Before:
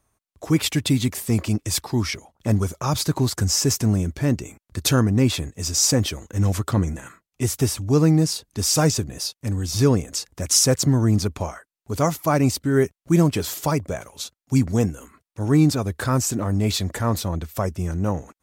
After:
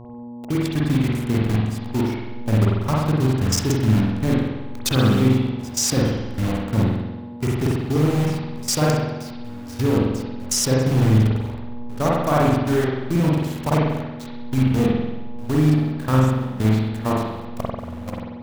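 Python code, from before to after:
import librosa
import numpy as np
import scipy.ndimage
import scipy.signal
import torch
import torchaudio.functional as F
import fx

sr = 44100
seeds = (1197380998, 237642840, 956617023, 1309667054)

y = fx.delta_hold(x, sr, step_db=-24.0)
y = fx.level_steps(y, sr, step_db=21)
y = fx.dmg_buzz(y, sr, base_hz=120.0, harmonics=9, level_db=-40.0, tilt_db=-6, odd_only=False)
y = fx.rev_spring(y, sr, rt60_s=1.1, pass_ms=(46,), chirp_ms=20, drr_db=-4.5)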